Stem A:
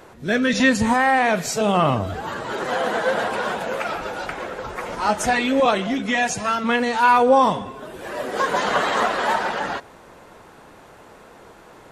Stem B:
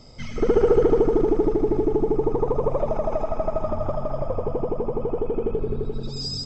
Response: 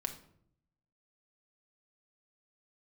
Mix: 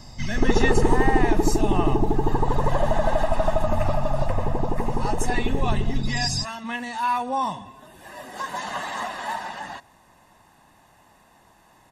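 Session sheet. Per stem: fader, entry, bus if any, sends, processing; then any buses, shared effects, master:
-11.5 dB, 0.00 s, no send, dry
+1.5 dB, 0.00 s, no send, dry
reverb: off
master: high shelf 6200 Hz +8.5 dB; comb 1.1 ms, depth 67%

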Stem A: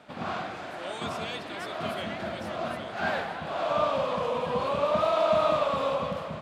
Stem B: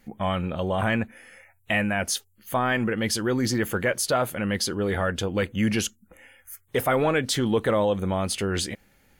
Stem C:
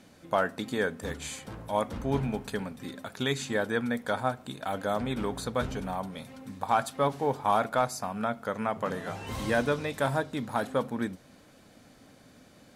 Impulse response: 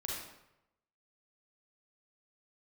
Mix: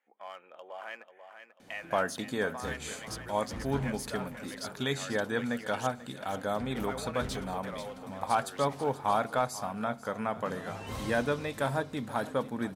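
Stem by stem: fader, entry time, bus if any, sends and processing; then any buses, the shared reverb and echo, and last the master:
off
-14.0 dB, 0.00 s, no send, echo send -9 dB, Wiener smoothing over 9 samples; Bessel high-pass 680 Hz, order 4
-2.5 dB, 1.60 s, no send, echo send -17 dB, dry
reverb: off
echo: feedback echo 0.49 s, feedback 38%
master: dry

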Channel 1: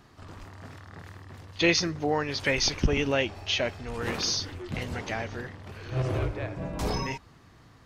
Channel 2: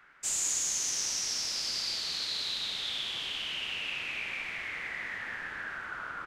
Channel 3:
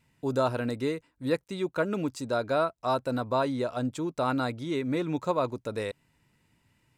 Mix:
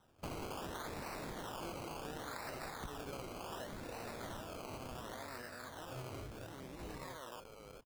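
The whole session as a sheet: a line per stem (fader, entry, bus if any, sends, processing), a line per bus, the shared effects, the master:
-18.0 dB, 0.00 s, no send, dry
-2.0 dB, 0.00 s, no send, pre-emphasis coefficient 0.8
-7.0 dB, 1.80 s, no send, stepped spectrum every 0.4 s; HPF 1400 Hz 6 dB/oct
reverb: off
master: decimation with a swept rate 19×, swing 60% 0.69 Hz; compressor 5:1, threshold -42 dBFS, peak gain reduction 11.5 dB

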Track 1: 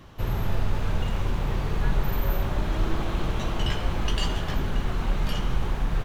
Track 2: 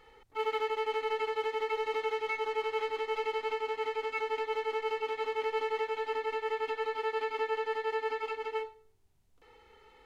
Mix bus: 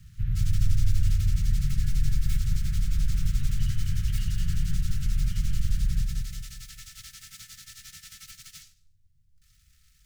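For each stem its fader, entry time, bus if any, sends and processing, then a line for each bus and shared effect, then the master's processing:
-9.0 dB, 0.00 s, no send, echo send -3.5 dB, high shelf 2800 Hz -10 dB; limiter -18.5 dBFS, peak gain reduction 6.5 dB
-4.0 dB, 0.00 s, no send, no echo send, compressor, threshold -33 dBFS, peak gain reduction 6.5 dB; noise-modulated delay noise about 5200 Hz, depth 0.12 ms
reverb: off
echo: feedback echo 0.2 s, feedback 44%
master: inverse Chebyshev band-stop 320–850 Hz, stop band 50 dB; tone controls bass +11 dB, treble 0 dB

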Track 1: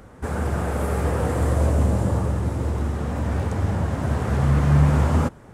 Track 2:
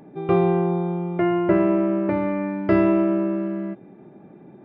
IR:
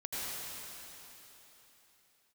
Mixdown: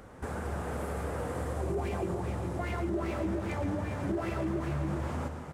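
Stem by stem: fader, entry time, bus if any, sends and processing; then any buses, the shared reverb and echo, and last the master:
-5.0 dB, 0.00 s, send -6.5 dB, no echo send, tone controls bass -4 dB, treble -1 dB; compressor 3:1, threshold -32 dBFS, peak gain reduction 12.5 dB
-2.0 dB, 1.40 s, no send, echo send -9 dB, modulation noise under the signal 12 dB; wah 2.5 Hz 230–2400 Hz, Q 4.5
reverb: on, RT60 3.7 s, pre-delay 75 ms
echo: echo 0.136 s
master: limiter -24 dBFS, peak gain reduction 9 dB

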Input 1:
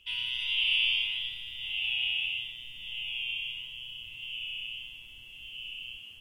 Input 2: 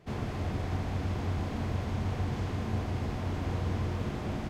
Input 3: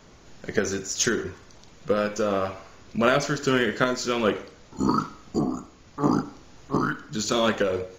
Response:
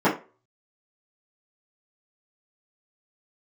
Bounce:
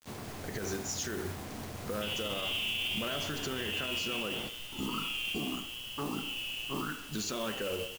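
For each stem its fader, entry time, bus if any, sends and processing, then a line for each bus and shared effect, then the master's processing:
-1.0 dB, 1.95 s, no send, dry
-4.5 dB, 0.00 s, no send, HPF 210 Hz 6 dB/oct; limiter -29.5 dBFS, peak gain reduction 4.5 dB
-4.5 dB, 0.00 s, no send, compressor, threshold -25 dBFS, peak gain reduction 9.5 dB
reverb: off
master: requantised 8-bit, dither none; modulation noise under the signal 14 dB; limiter -25.5 dBFS, peak gain reduction 9 dB

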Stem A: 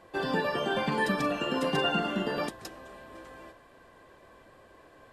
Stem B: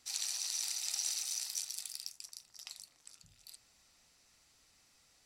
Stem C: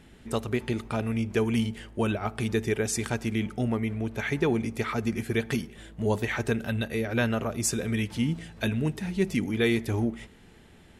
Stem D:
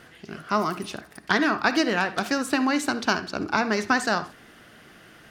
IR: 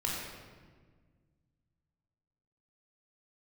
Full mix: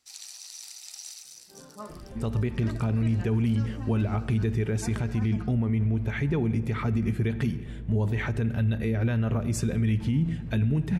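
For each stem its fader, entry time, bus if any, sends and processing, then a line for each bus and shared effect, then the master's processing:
-15.5 dB, 1.35 s, send -5.5 dB, bell 2500 Hz -14.5 dB 2.1 oct; compressor, threshold -33 dBFS, peak gain reduction 8 dB; tremolo 3.8 Hz, depth 79%
1.11 s -5.5 dB -> 1.53 s -13 dB -> 2.51 s -13 dB -> 2.88 s -1 dB, 0.00 s, no send, dry
-2.5 dB, 1.90 s, send -20 dB, tone controls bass +12 dB, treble -7 dB
-17.0 dB, 1.25 s, no send, median-filter separation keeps harmonic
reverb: on, RT60 1.6 s, pre-delay 18 ms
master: limiter -17.5 dBFS, peak gain reduction 8 dB

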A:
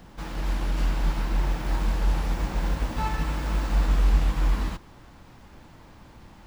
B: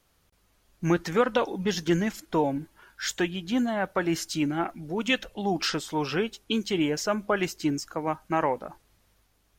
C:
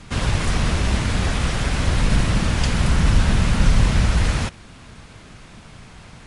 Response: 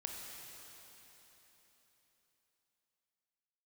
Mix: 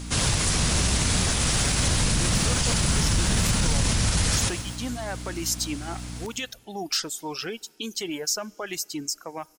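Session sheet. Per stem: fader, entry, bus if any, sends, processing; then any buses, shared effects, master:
-10.5 dB, 0.00 s, no send, no echo send, compressor, threshold -24 dBFS, peak gain reduction 9.5 dB
-4.0 dB, 1.30 s, send -22.5 dB, no echo send, reverb removal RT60 1.3 s; limiter -19.5 dBFS, peak gain reduction 8.5 dB
-2.0 dB, 0.00 s, no send, echo send -13 dB, bell 120 Hz +5.5 dB 1.8 oct; hum 60 Hz, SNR 13 dB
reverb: on, RT60 3.9 s, pre-delay 20 ms
echo: feedback echo 0.126 s, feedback 53%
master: tone controls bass -5 dB, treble +15 dB; limiter -13 dBFS, peak gain reduction 9.5 dB

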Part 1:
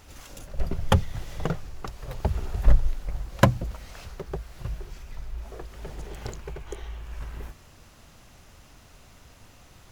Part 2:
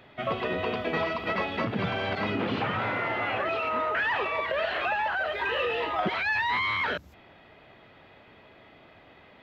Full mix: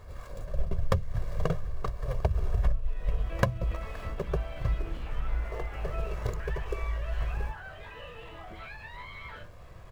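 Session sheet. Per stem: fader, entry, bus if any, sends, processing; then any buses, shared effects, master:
+1.5 dB, 0.00 s, no send, median filter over 15 samples; comb 1.8 ms, depth 68%
+2.5 dB, 2.45 s, no send, compressor, threshold -33 dBFS, peak gain reduction 10 dB; resonator bank A2 sus4, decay 0.26 s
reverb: off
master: compressor 16:1, threshold -21 dBFS, peak gain reduction 18 dB

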